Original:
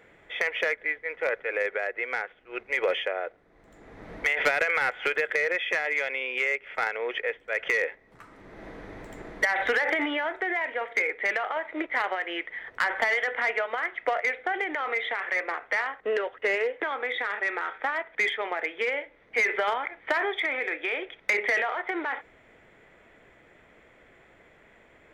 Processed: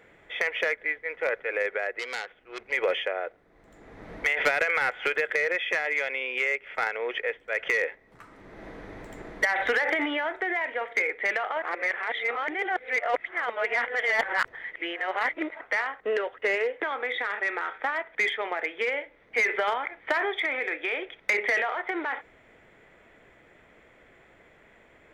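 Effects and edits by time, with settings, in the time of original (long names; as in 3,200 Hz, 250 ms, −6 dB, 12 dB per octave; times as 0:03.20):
0:01.99–0:02.72: saturating transformer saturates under 3,700 Hz
0:11.62–0:15.61: reverse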